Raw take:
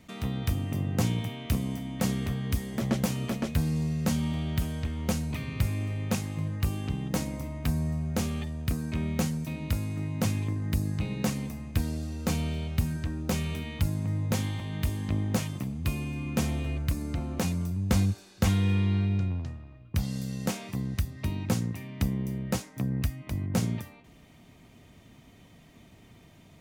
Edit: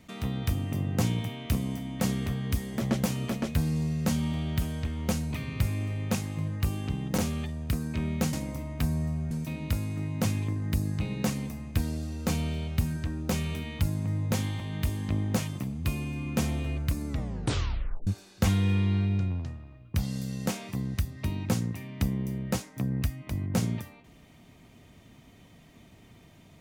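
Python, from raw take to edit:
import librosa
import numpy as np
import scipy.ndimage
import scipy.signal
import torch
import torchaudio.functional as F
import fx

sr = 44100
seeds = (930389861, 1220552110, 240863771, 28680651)

y = fx.edit(x, sr, fx.move(start_s=7.18, length_s=0.98, to_s=9.31),
    fx.tape_stop(start_s=17.08, length_s=0.99), tone=tone)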